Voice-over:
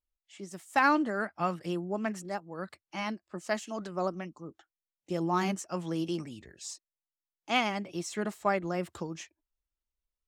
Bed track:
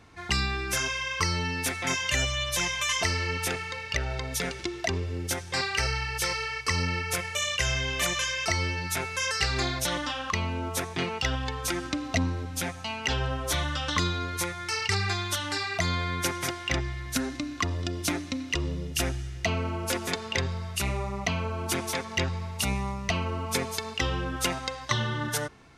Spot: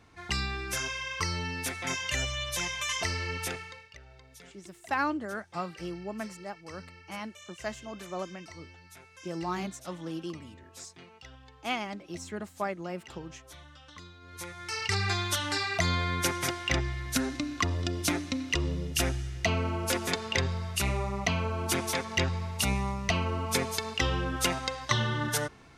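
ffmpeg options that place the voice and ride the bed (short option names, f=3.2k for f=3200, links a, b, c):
-filter_complex "[0:a]adelay=4150,volume=-4.5dB[a];[1:a]volume=17.5dB,afade=t=out:st=3.46:d=0.45:silence=0.133352,afade=t=in:st=14.21:d=0.96:silence=0.0794328[b];[a][b]amix=inputs=2:normalize=0"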